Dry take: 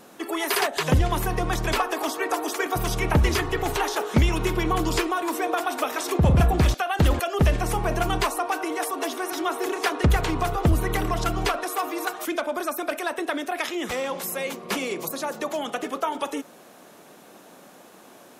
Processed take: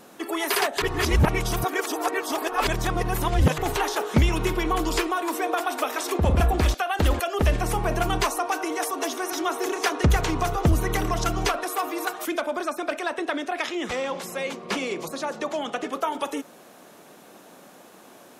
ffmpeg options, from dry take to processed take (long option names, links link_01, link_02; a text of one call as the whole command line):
ffmpeg -i in.wav -filter_complex "[0:a]asettb=1/sr,asplit=3[link_01][link_02][link_03];[link_01]atrim=end=4.534[link_04];[link_02]atrim=start=4.53:end=7.48,asetpts=PTS-STARTPTS,afade=type=in:duration=0.004:curve=qsin,afade=type=out:start_time=2.946:duration=0.004:curve=qsin,equalizer=frequency=140:width=2.2:gain=-13[link_05];[link_03]atrim=start=7.476[link_06];[link_04][link_05]acrossfade=duration=0.004:curve1=hsin:curve2=qsin[link_07];[link_07][link_06]acrossfade=duration=0.004:curve1=qsin:curve2=hsin,asettb=1/sr,asplit=3[link_08][link_09][link_10];[link_08]atrim=end=8.224[link_11];[link_09]atrim=start=8.22:end=11.51,asetpts=PTS-STARTPTS,afade=type=in:duration=0.004:curve=qsin,afade=type=out:start_time=3.286:duration=0.004:curve=qsin,equalizer=frequency=6100:width_type=o:width=0.4:gain=6[link_12];[link_10]atrim=start=11.506[link_13];[link_11][link_12]acrossfade=duration=0.004:curve1=hsin:curve2=qsin[link_14];[link_14][link_13]acrossfade=duration=0.004:curve1=qsin:curve2=hsin,asettb=1/sr,asplit=3[link_15][link_16][link_17];[link_15]atrim=end=12.554[link_18];[link_16]atrim=start=12.55:end=15.93,asetpts=PTS-STARTPTS,afade=type=in:duration=0.004:curve=qsin,afade=type=out:start_time=3.376:duration=0.004:curve=qsin,lowpass=7200[link_19];[link_17]atrim=start=15.926[link_20];[link_18][link_19]acrossfade=duration=0.004:curve1=hsin:curve2=qsin[link_21];[link_21][link_20]acrossfade=duration=0.004:curve1=qsin:curve2=hsin,asplit=3[link_22][link_23][link_24];[link_22]atrim=end=0.822[link_25];[link_23]atrim=start=0.818:end=3.582,asetpts=PTS-STARTPTS,areverse[link_26];[link_24]atrim=start=3.578[link_27];[link_25][link_26]acrossfade=duration=0.004:curve1=hsin:curve2=hsin[link_28];[link_28][link_27]acrossfade=duration=0.004:curve1=hsin:curve2=hsin" out.wav